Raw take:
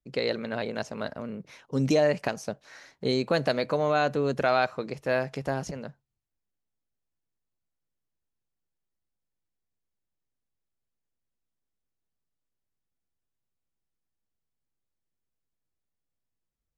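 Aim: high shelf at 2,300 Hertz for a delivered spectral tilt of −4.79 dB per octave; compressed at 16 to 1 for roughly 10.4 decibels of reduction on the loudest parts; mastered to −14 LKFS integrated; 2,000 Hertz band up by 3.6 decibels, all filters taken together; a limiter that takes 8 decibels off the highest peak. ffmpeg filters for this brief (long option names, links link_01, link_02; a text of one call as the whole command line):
ffmpeg -i in.wav -af "equalizer=frequency=2000:width_type=o:gain=6.5,highshelf=frequency=2300:gain=-3,acompressor=threshold=-28dB:ratio=16,volume=23dB,alimiter=limit=-1dB:level=0:latency=1" out.wav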